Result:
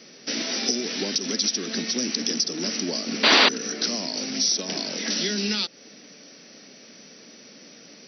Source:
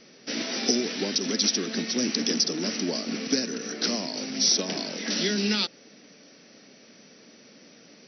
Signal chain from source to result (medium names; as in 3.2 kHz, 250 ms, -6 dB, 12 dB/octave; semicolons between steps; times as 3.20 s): high-pass 97 Hz; treble shelf 4.5 kHz +7 dB; compression 2:1, threshold -29 dBFS, peak gain reduction 8.5 dB; painted sound noise, 3.23–3.49 s, 210–4900 Hz -19 dBFS; trim +3 dB